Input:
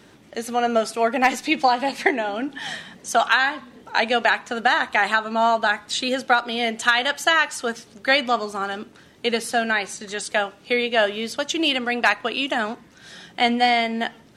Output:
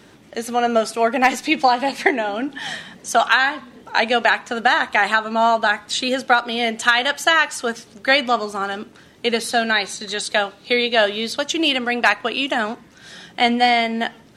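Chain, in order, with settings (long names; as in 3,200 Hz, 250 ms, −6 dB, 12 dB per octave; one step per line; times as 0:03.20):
0:09.39–0:11.40: parametric band 4,000 Hz +11.5 dB 0.26 octaves
level +2.5 dB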